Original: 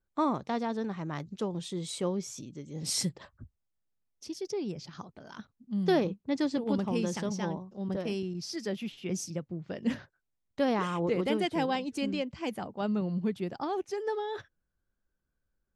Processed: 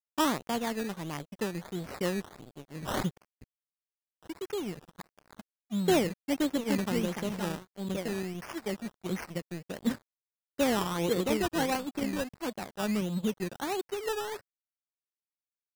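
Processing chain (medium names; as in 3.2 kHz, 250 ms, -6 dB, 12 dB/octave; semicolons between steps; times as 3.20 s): decimation with a swept rate 16×, swing 60% 1.5 Hz; crossover distortion -44 dBFS; trim +1.5 dB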